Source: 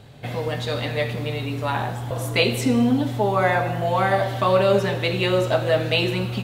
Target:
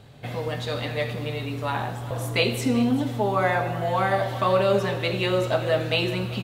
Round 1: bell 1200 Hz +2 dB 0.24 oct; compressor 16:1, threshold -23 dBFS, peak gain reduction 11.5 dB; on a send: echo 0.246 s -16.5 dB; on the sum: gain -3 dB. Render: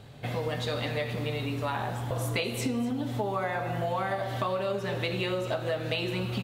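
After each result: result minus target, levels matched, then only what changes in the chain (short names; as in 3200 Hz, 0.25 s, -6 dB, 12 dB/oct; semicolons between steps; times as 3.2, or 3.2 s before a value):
compressor: peak gain reduction +11.5 dB; echo 0.143 s early
remove: compressor 16:1, threshold -23 dBFS, peak gain reduction 11.5 dB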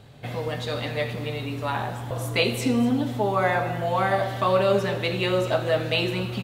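echo 0.143 s early
change: echo 0.389 s -16.5 dB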